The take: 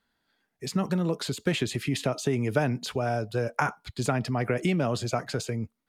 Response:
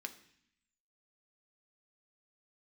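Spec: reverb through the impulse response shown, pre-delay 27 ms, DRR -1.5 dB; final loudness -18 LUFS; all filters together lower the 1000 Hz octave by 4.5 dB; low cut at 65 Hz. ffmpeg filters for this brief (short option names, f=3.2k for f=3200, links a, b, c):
-filter_complex "[0:a]highpass=65,equalizer=f=1k:t=o:g=-7,asplit=2[a][b];[1:a]atrim=start_sample=2205,adelay=27[c];[b][c]afir=irnorm=-1:irlink=0,volume=3.5dB[d];[a][d]amix=inputs=2:normalize=0,volume=9dB"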